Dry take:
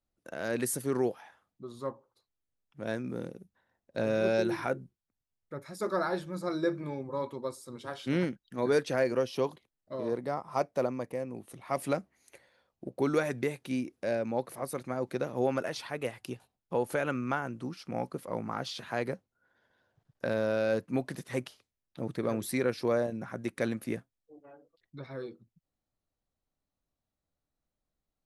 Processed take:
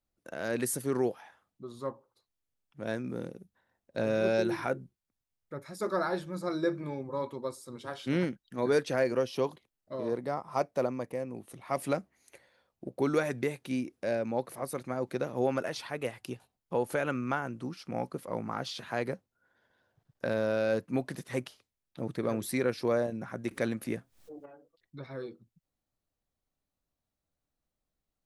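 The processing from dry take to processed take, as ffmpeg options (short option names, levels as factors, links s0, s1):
-filter_complex "[0:a]asettb=1/sr,asplit=3[s0][s1][s2];[s0]atrim=end=23.514[s3];[s1]atrim=start=23.51:end=24.46,asetpts=PTS-STARTPTS,afade=t=in:d=0.004:c=qsin,afade=t=out:st=0.946:d=0.004:c=qsin,acompressor=mode=upward:threshold=0.0158:ratio=2.5:attack=3.2:release=140:knee=2.83:detection=peak[s4];[s2]atrim=start=24.456[s5];[s3][s4]acrossfade=d=0.004:c1=hsin:c2=qsin[s6];[s6][s5]acrossfade=d=0.004:c1=qsin:c2=hsin"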